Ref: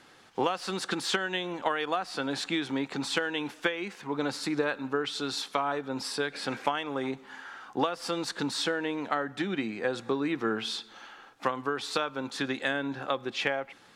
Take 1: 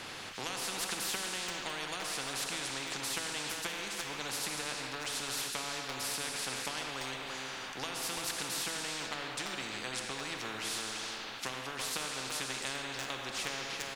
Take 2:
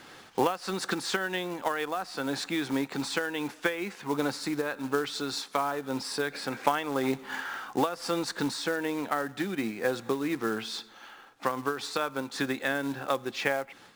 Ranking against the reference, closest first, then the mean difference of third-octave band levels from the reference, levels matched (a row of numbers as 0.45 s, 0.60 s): 2, 1; 4.5 dB, 13.0 dB